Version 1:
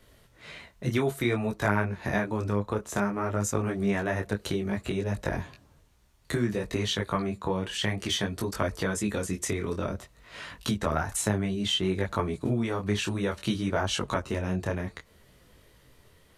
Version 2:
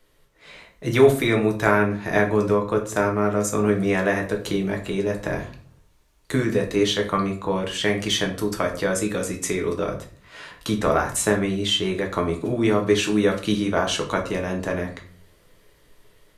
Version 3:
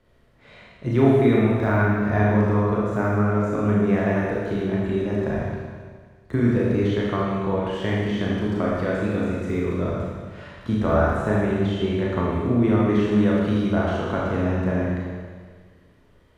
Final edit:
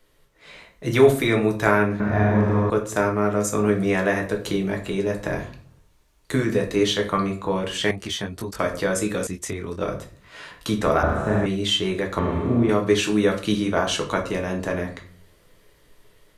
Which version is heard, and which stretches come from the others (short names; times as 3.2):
2
2–2.7 from 3
7.91–8.59 from 1
9.27–9.81 from 1
11.03–11.46 from 3
12.19–12.69 from 3